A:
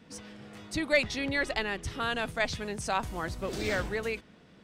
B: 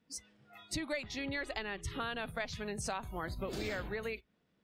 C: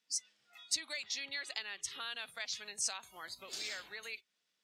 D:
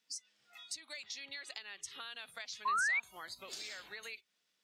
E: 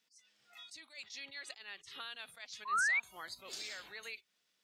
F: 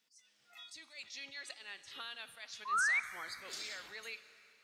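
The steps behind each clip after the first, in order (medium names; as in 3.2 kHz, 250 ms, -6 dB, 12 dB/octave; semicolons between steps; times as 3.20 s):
spectral noise reduction 22 dB; compression 6:1, threshold -38 dBFS, peak gain reduction 17.5 dB; trim +2.5 dB
band-pass filter 6.1 kHz, Q 1.2; trim +9 dB
compression 4:1, threshold -45 dBFS, peak gain reduction 14 dB; painted sound rise, 2.65–3.00 s, 1–2.4 kHz -34 dBFS; trim +2 dB
attacks held to a fixed rise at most 190 dB/s; trim +1 dB
plate-style reverb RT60 3.1 s, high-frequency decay 0.9×, DRR 12.5 dB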